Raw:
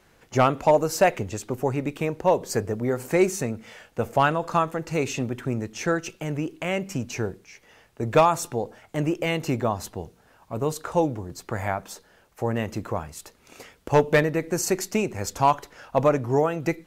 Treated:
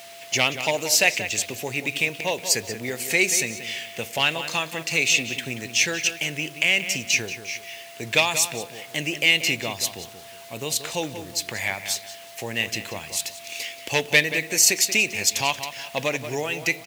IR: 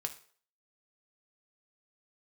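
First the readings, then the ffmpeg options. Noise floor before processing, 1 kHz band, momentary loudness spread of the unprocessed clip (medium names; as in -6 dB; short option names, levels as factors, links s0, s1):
-59 dBFS, -7.5 dB, 12 LU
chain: -filter_complex "[0:a]bass=f=250:g=-1,treble=f=4000:g=-13,aeval=exprs='val(0)+0.01*sin(2*PI*680*n/s)':c=same,asplit=2[s0][s1];[s1]acompressor=threshold=0.0251:ratio=6,volume=0.794[s2];[s0][s2]amix=inputs=2:normalize=0,aexciter=amount=13:drive=8.5:freq=2100,asplit=2[s3][s4];[s4]adelay=182,lowpass=f=3500:p=1,volume=0.316,asplit=2[s5][s6];[s6]adelay=182,lowpass=f=3500:p=1,volume=0.32,asplit=2[s7][s8];[s8]adelay=182,lowpass=f=3500:p=1,volume=0.32,asplit=2[s9][s10];[s10]adelay=182,lowpass=f=3500:p=1,volume=0.32[s11];[s5][s7][s9][s11]amix=inputs=4:normalize=0[s12];[s3][s12]amix=inputs=2:normalize=0,acrusher=bits=5:mix=0:aa=0.000001,highpass=98,volume=0.376"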